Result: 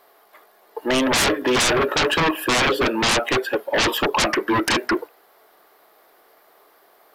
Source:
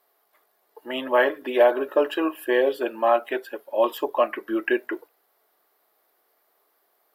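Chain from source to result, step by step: high shelf 6200 Hz -8 dB; sine folder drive 20 dB, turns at -6.5 dBFS; gain -8.5 dB

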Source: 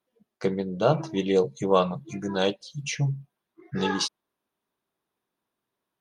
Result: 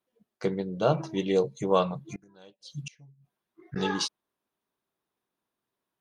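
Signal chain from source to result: 2.04–3.76 flipped gate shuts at -24 dBFS, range -26 dB; gain -2.5 dB

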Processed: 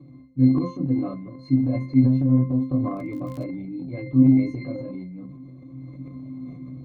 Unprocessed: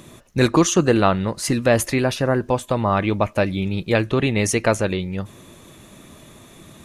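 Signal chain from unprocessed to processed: chorus voices 6, 0.49 Hz, delay 25 ms, depth 2.6 ms; reverb, pre-delay 3 ms, DRR -2.5 dB; AGC gain up to 3.5 dB; octave resonator C, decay 0.36 s; 2.96–3.43 crackle 26/s -> 86/s -40 dBFS; transient shaper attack +2 dB, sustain +8 dB; gain +1 dB

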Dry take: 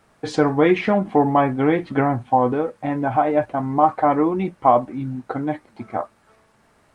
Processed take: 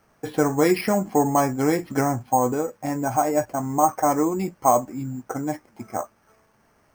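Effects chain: careless resampling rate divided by 6×, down filtered, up hold; gain -3 dB

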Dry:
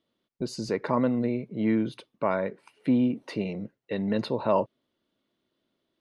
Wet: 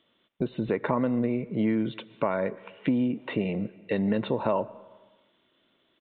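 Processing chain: compressor, threshold -27 dBFS, peak gain reduction 8.5 dB; on a send at -20 dB: reverb RT60 1.1 s, pre-delay 75 ms; on the sum: downsampling 8000 Hz; mismatched tape noise reduction encoder only; gain +5 dB

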